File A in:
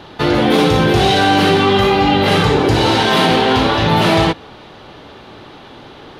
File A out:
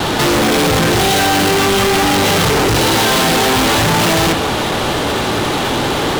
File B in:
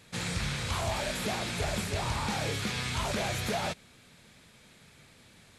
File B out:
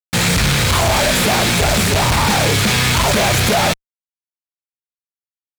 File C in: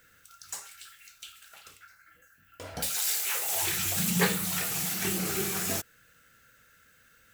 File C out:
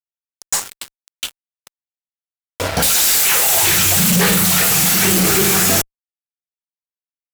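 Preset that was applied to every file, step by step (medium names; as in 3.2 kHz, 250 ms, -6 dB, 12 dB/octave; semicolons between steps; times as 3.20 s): expander -45 dBFS; fuzz box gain 39 dB, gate -44 dBFS; waveshaping leveller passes 1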